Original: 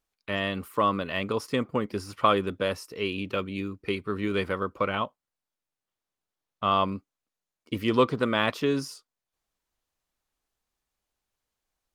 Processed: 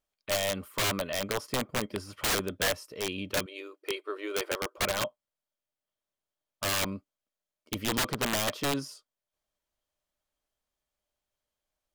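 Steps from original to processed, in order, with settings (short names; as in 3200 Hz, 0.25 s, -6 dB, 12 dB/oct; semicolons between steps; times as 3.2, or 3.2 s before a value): 3.46–4.78 brick-wall FIR high-pass 310 Hz; small resonant body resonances 600/3200 Hz, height 12 dB, ringing for 65 ms; wrapped overs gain 18 dB; gain -4 dB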